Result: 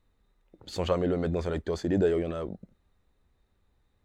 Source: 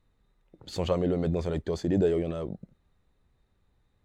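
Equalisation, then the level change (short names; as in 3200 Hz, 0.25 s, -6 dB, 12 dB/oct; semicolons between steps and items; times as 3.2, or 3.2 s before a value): dynamic EQ 1500 Hz, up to +6 dB, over -49 dBFS, Q 1.7; bell 140 Hz -7.5 dB 0.45 oct; 0.0 dB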